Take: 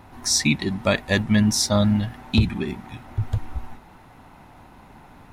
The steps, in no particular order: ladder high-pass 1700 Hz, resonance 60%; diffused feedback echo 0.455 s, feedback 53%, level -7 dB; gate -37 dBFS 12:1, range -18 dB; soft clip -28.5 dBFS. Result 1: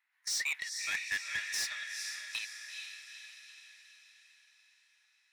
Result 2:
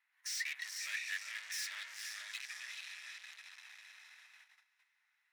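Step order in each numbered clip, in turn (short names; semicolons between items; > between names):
ladder high-pass > gate > diffused feedback echo > soft clip; diffused feedback echo > soft clip > gate > ladder high-pass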